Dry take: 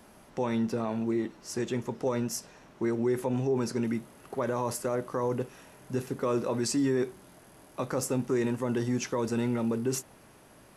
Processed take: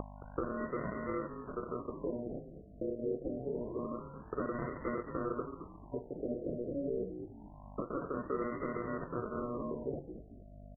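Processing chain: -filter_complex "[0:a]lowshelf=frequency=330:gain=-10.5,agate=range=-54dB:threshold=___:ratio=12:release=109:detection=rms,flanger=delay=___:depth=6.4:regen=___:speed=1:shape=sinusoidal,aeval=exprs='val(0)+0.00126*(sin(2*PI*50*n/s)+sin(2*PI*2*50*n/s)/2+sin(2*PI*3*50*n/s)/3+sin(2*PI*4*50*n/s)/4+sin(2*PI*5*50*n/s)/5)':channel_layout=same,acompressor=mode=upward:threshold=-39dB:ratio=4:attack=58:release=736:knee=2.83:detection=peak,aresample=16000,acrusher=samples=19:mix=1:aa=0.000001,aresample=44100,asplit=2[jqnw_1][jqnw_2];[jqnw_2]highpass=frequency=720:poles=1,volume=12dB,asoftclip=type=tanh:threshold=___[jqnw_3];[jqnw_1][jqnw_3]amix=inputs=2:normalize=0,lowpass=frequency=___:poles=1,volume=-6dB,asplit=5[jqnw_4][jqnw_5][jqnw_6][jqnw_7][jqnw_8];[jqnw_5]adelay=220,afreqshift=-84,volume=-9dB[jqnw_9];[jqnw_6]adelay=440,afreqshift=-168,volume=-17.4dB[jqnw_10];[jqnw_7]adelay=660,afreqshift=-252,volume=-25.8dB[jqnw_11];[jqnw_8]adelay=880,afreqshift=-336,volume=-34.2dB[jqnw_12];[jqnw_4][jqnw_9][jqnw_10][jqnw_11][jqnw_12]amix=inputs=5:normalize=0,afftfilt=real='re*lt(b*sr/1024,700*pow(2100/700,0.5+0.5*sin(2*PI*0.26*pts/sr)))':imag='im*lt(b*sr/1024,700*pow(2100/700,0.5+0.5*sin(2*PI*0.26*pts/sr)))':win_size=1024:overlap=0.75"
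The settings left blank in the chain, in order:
-44dB, 7.3, -73, -21dB, 2400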